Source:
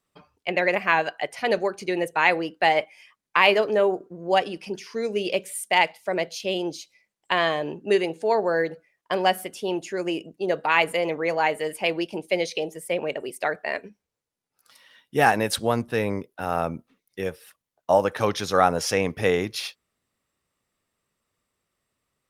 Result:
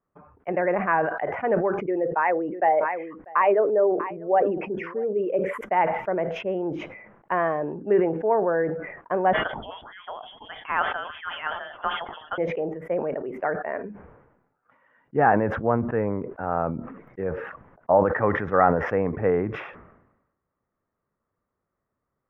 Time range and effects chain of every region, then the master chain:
0:01.81–0:05.61: spectral envelope exaggerated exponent 1.5 + single-tap delay 642 ms −22.5 dB
0:09.33–0:12.38: low-shelf EQ 180 Hz +11 dB + echo through a band-pass that steps 111 ms, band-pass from 170 Hz, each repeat 0.7 octaves, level −12 dB + voice inversion scrambler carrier 3,600 Hz
0:18.11–0:18.89: parametric band 1,900 Hz +13 dB 0.2 octaves + linearly interpolated sample-rate reduction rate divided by 2×
whole clip: inverse Chebyshev low-pass filter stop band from 4,000 Hz, stop band 50 dB; level that may fall only so fast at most 59 dB per second

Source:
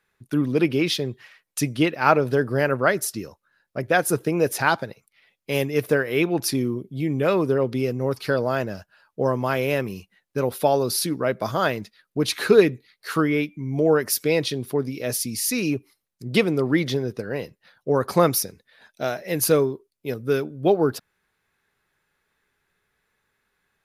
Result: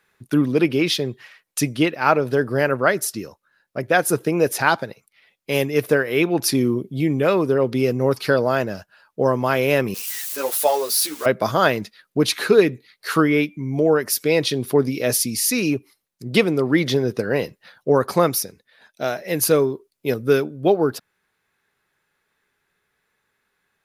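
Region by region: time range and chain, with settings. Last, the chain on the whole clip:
0:09.94–0:11.26: spike at every zero crossing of −23.5 dBFS + Bessel high-pass filter 700 Hz + string-ensemble chorus
whole clip: low-shelf EQ 82 Hz −9 dB; speech leveller within 4 dB 0.5 s; level +4 dB

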